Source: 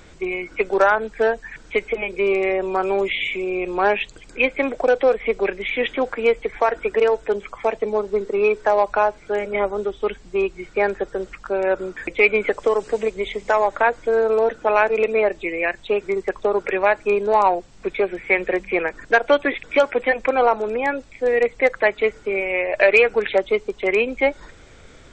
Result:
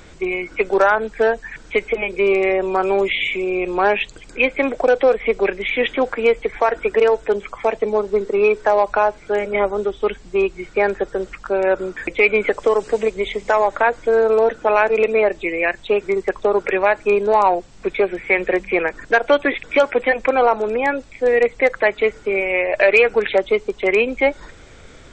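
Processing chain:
in parallel at −2 dB: brickwall limiter −10.5 dBFS, peak gain reduction 8.5 dB
on the sum: downsampling to 22,050 Hz
level −2 dB

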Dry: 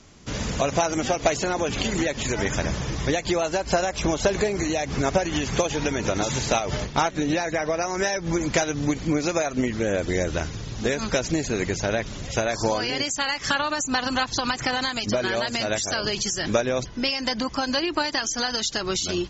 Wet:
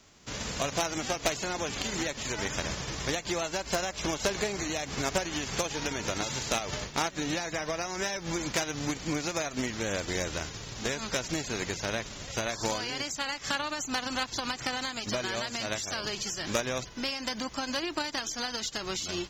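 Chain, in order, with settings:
spectral envelope flattened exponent 0.6
harmonic generator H 4 −8 dB, 6 −13 dB, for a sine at −6 dBFS
level −8 dB

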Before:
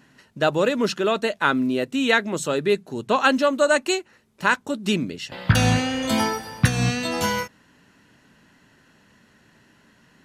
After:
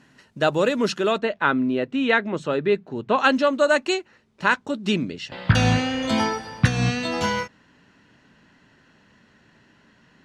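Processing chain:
low-pass filter 10,000 Hz 12 dB per octave, from 0:01.18 2,800 Hz, from 0:03.18 5,500 Hz

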